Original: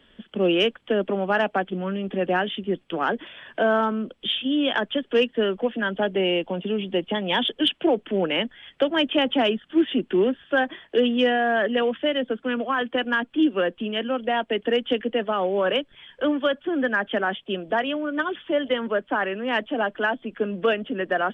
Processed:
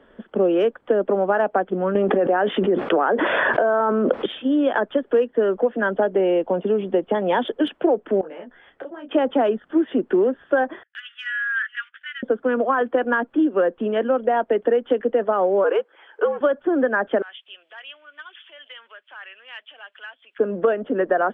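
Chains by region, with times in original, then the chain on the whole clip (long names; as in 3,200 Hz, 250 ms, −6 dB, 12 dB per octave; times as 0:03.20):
0:01.95–0:04.26: high-pass filter 340 Hz 6 dB per octave + high-frequency loss of the air 200 metres + envelope flattener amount 100%
0:08.21–0:09.11: downward compressor 16 to 1, threshold −34 dBFS + micro pitch shift up and down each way 27 cents
0:10.83–0:12.23: Butterworth high-pass 1,400 Hz 72 dB per octave + noise gate −46 dBFS, range −20 dB
0:15.64–0:16.41: frequency shifter −75 Hz + high-pass filter 380 Hz 24 dB per octave
0:17.22–0:20.39: downward compressor 2 to 1, threshold −34 dBFS + high-pass with resonance 2,900 Hz, resonance Q 3
whole clip: drawn EQ curve 160 Hz 0 dB, 490 Hz +11 dB, 1,500 Hz +6 dB, 2,900 Hz −10 dB, 4,300 Hz −8 dB; downward compressor 4 to 1, threshold −16 dBFS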